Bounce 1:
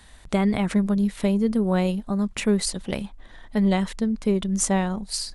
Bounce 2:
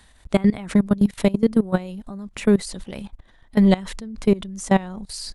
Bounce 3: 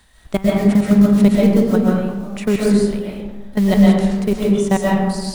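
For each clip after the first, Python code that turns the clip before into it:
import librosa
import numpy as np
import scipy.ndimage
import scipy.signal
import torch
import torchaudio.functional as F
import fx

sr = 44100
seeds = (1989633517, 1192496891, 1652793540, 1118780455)

y1 = fx.level_steps(x, sr, step_db=20)
y1 = F.gain(torch.from_numpy(y1), 7.0).numpy()
y2 = fx.quant_companded(y1, sr, bits=6)
y2 = fx.rev_freeverb(y2, sr, rt60_s=1.3, hf_ratio=0.45, predelay_ms=90, drr_db=-4.5)
y2 = F.gain(torch.from_numpy(y2), -1.0).numpy()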